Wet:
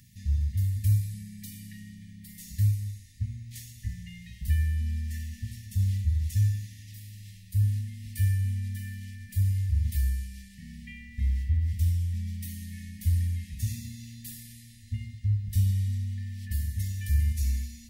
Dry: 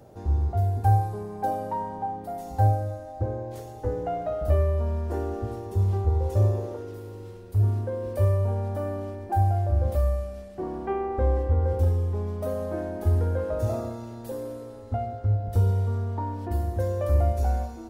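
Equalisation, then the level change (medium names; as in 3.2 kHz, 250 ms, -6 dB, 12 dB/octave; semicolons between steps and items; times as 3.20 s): brick-wall FIR band-stop 240–1700 Hz; peaking EQ 1.4 kHz +5 dB 0.77 oct; treble shelf 2.2 kHz +11.5 dB; -2.5 dB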